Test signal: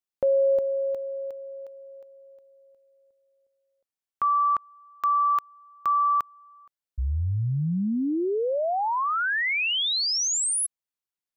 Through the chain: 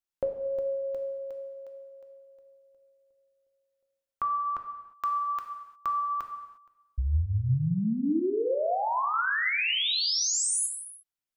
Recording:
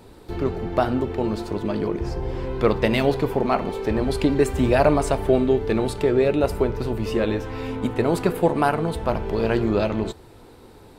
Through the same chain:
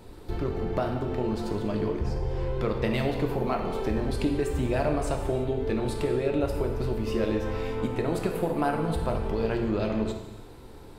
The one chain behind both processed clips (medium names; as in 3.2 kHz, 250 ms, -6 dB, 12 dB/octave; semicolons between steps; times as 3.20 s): bass shelf 70 Hz +9.5 dB; compression 3:1, threshold -23 dBFS; gated-style reverb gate 380 ms falling, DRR 3.5 dB; trim -3 dB